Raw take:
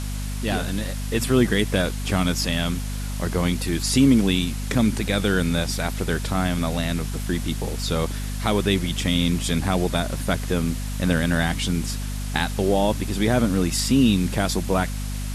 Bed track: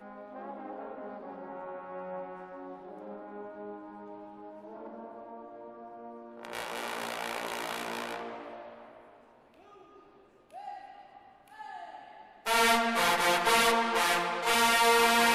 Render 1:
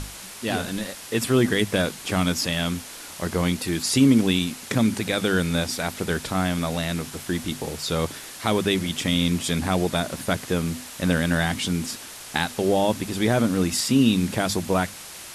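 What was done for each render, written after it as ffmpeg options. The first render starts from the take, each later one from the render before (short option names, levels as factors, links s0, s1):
-af "bandreject=f=50:t=h:w=6,bandreject=f=100:t=h:w=6,bandreject=f=150:t=h:w=6,bandreject=f=200:t=h:w=6,bandreject=f=250:t=h:w=6"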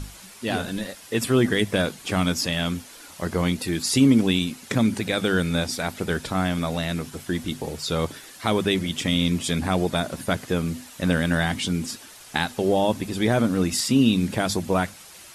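-af "afftdn=nr=8:nf=-40"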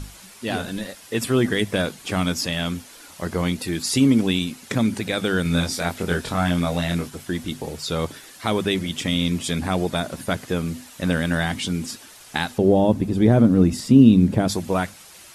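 -filter_complex "[0:a]asettb=1/sr,asplit=3[s0][s1][s2];[s0]atrim=end=5.434[s3];[s1]atrim=start=5.43:end=7.08,asetpts=PTS-STARTPTS,afade=t=in:d=0.004:c=qsin,afade=t=out:st=1.646:d=0.004:c=qsin,asplit=2[s4][s5];[s5]adelay=23,volume=0.75[s6];[s4][s6]amix=inputs=2:normalize=0,atrim=end_sample=72765[s7];[s2]atrim=start=7.076[s8];[s3][s7]acrossfade=d=0.004:c1=hsin:c2=qsin[s9];[s9][s8]acrossfade=d=0.004:c1=qsin:c2=hsin,asettb=1/sr,asplit=3[s10][s11][s12];[s10]atrim=end=12.584[s13];[s11]atrim=start=12.58:end=14.48,asetpts=PTS-STARTPTS,afade=t=in:d=0.004:c=qsin,afade=t=out:st=1.896:d=0.004:c=qsin,tiltshelf=f=780:g=8.5[s14];[s12]atrim=start=14.476[s15];[s13][s14]acrossfade=d=0.004:c1=hsin:c2=qsin[s16];[s16][s15]acrossfade=d=0.004:c1=qsin:c2=hsin"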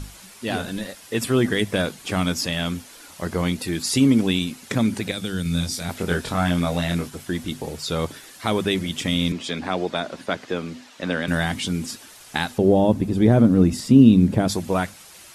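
-filter_complex "[0:a]asettb=1/sr,asplit=3[s0][s1][s2];[s0]atrim=end=5.114[s3];[s1]atrim=start=5.11:end=5.89,asetpts=PTS-STARTPTS,afade=t=in:d=0.004:c=qsin,afade=t=out:st=0.776:d=0.004:c=qsin,acrossover=split=230|3000[s4][s5][s6];[s5]acompressor=threshold=0.00224:ratio=1.5:attack=3.2:release=140:knee=2.83:detection=peak[s7];[s4][s7][s6]amix=inputs=3:normalize=0[s8];[s2]atrim=start=5.886[s9];[s3][s8]acrossfade=d=0.004:c1=hsin:c2=qsin[s10];[s10][s9]acrossfade=d=0.004:c1=qsin:c2=hsin,asettb=1/sr,asplit=3[s11][s12][s13];[s11]atrim=end=9.324[s14];[s12]atrim=start=9.32:end=11.28,asetpts=PTS-STARTPTS,afade=t=in:d=0.004:c=qsin,afade=t=out:st=1.956:d=0.004:c=qsin,acrossover=split=220 6200:gain=0.2 1 0.112[s15][s16][s17];[s15][s16][s17]amix=inputs=3:normalize=0[s18];[s13]atrim=start=11.276[s19];[s14][s18]acrossfade=d=0.004:c1=hsin:c2=qsin[s20];[s20][s19]acrossfade=d=0.004:c1=qsin:c2=hsin"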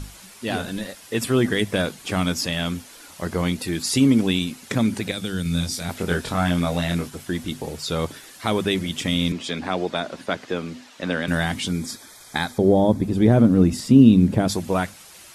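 -filter_complex "[0:a]asettb=1/sr,asplit=3[s0][s1][s2];[s0]atrim=end=11.714[s3];[s1]atrim=start=11.71:end=13.04,asetpts=PTS-STARTPTS,afade=t=in:d=0.004:c=qsin,afade=t=out:st=1.326:d=0.004:c=qsin,asuperstop=centerf=2800:order=8:qfactor=4.8[s4];[s2]atrim=start=13.036[s5];[s3][s4]acrossfade=d=0.004:c1=hsin:c2=qsin[s6];[s6][s5]acrossfade=d=0.004:c1=qsin:c2=hsin"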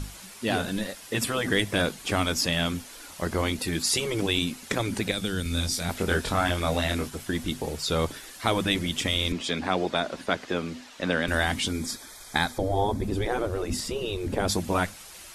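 -af "afftfilt=real='re*lt(hypot(re,im),0.562)':imag='im*lt(hypot(re,im),0.562)':win_size=1024:overlap=0.75,asubboost=boost=4:cutoff=55"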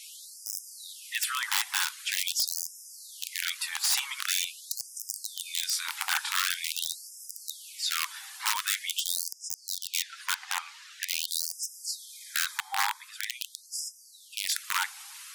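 -af "aeval=exprs='(mod(7.08*val(0)+1,2)-1)/7.08':c=same,afftfilt=real='re*gte(b*sr/1024,730*pow(5000/730,0.5+0.5*sin(2*PI*0.45*pts/sr)))':imag='im*gte(b*sr/1024,730*pow(5000/730,0.5+0.5*sin(2*PI*0.45*pts/sr)))':win_size=1024:overlap=0.75"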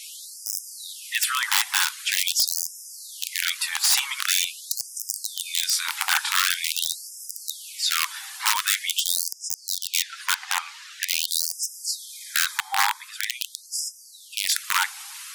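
-af "volume=2.11"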